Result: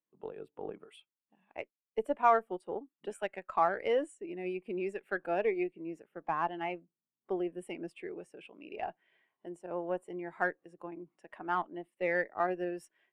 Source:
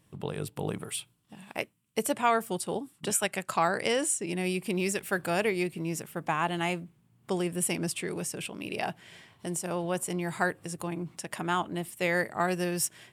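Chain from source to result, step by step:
three-way crossover with the lows and the highs turned down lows −24 dB, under 250 Hz, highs −15 dB, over 3,200 Hz
harmonic generator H 8 −26 dB, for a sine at −12 dBFS
every bin expanded away from the loudest bin 1.5 to 1
level −1 dB

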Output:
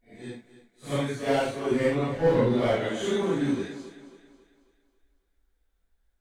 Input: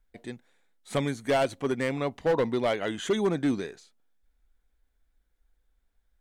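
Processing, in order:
random phases in long frames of 200 ms
0:01.71–0:02.89: low-shelf EQ 280 Hz +9.5 dB
feedback echo with a high-pass in the loop 272 ms, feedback 46%, high-pass 170 Hz, level −13.5 dB

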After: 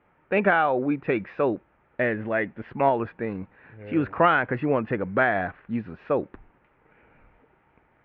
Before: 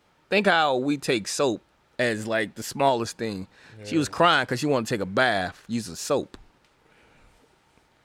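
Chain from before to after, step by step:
Butterworth low-pass 2,400 Hz 36 dB per octave

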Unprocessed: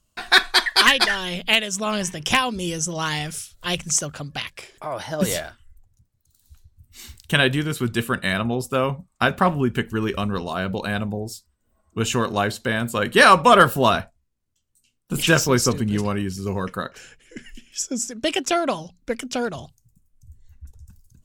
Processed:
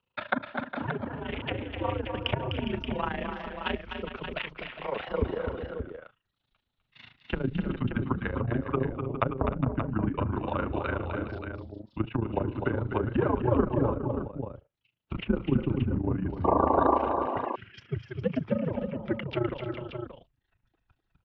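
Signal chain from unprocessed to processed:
treble cut that deepens with the level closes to 430 Hz, closed at −17 dBFS
sound drawn into the spectrogram noise, 0:16.44–0:16.98, 350–1,300 Hz −20 dBFS
amplitude modulation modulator 27 Hz, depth 75%
on a send: multi-tap delay 252/306/410/578 ms −7/−15.5/−11.5/−8 dB
on the sum: single-sideband voice off tune −120 Hz 210–3,500 Hz

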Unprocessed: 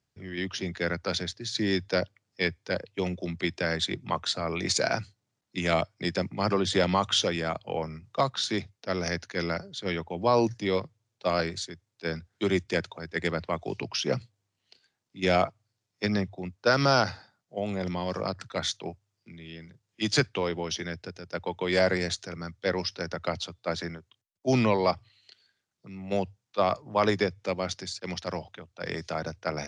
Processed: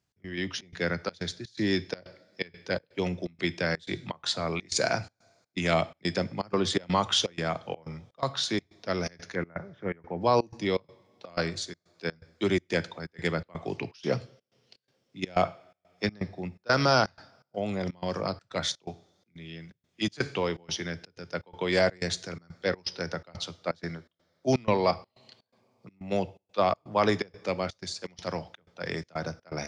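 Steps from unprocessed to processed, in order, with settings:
0:09.35–0:10.21: inverse Chebyshev low-pass filter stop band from 4,000 Hz, stop band 40 dB
coupled-rooms reverb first 0.52 s, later 3.9 s, from −27 dB, DRR 14.5 dB
gate pattern "x.xxx.xxx.x" 124 BPM −24 dB

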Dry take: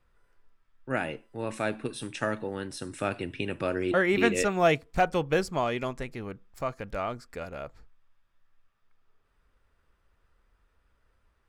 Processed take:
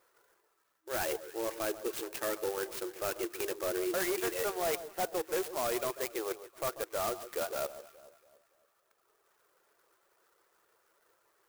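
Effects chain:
running median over 5 samples
reverb reduction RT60 0.58 s
reversed playback
downward compressor 6 to 1, threshold −34 dBFS, peak gain reduction 15.5 dB
reversed playback
brick-wall band-pass 320–10,000 Hz
hard clipping −35.5 dBFS, distortion −10 dB
on a send: delay that swaps between a low-pass and a high-pass 141 ms, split 1,300 Hz, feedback 62%, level −12.5 dB
on the sum: converter with an unsteady clock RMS 0.081 ms
level +7 dB

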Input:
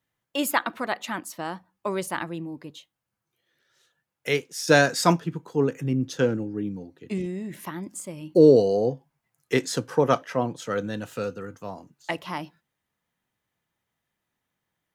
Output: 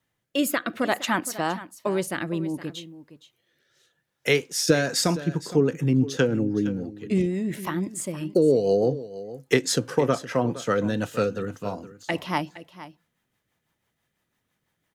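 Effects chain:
downward compressor 6 to 1, threshold −22 dBFS, peak gain reduction 12 dB
rotating-speaker cabinet horn 0.6 Hz, later 6 Hz, at 0:04.40
on a send: single-tap delay 465 ms −15.5 dB
on the sum: level +7.5 dB

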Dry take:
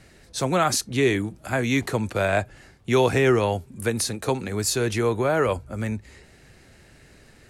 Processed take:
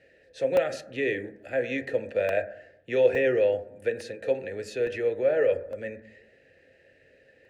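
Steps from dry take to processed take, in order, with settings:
formant filter e
low-shelf EQ 110 Hz +11.5 dB
on a send at −8 dB: convolution reverb RT60 0.75 s, pre-delay 5 ms
on the sum: regular buffer underruns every 0.86 s, samples 64, zero, from 0:00.57
level +5 dB

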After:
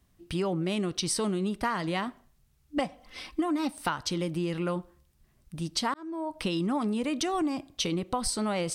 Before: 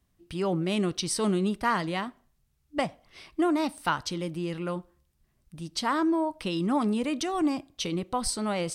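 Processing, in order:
0:02.77–0:03.71: comb filter 3.9 ms, depth 73%
downward compressor, threshold −31 dBFS, peak gain reduction 11.5 dB
0:05.94–0:06.39: fade in
level +5 dB

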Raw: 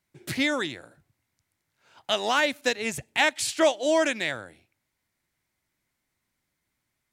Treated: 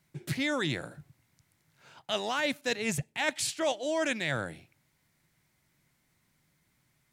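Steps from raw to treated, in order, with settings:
parametric band 150 Hz +10 dB 0.64 octaves
reversed playback
downward compressor 6 to 1, threshold −34 dBFS, peak gain reduction 16.5 dB
reversed playback
level +6 dB

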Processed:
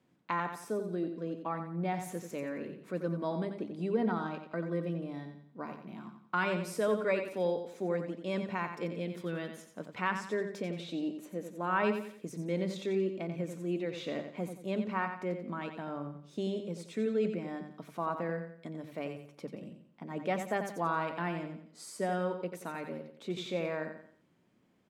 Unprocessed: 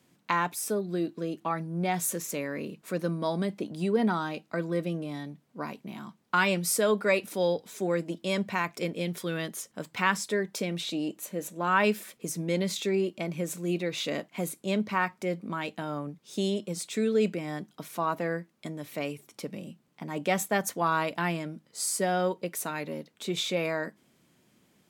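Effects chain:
low-pass filter 1,600 Hz 6 dB per octave
mains-hum notches 50/100/150/200 Hz
repeating echo 89 ms, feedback 37%, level −8 dB
level −4.5 dB

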